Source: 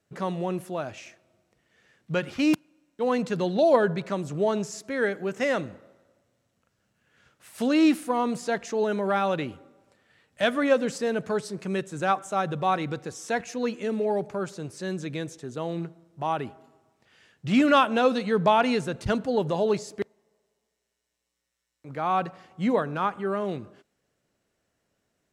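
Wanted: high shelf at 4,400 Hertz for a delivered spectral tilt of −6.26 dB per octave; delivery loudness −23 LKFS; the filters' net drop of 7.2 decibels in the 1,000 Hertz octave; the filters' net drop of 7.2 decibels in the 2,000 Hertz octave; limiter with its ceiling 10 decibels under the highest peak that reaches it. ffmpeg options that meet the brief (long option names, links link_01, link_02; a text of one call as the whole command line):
ffmpeg -i in.wav -af "equalizer=frequency=1000:width_type=o:gain=-8.5,equalizer=frequency=2000:width_type=o:gain=-5,highshelf=frequency=4400:gain=-7.5,volume=9dB,alimiter=limit=-12.5dB:level=0:latency=1" out.wav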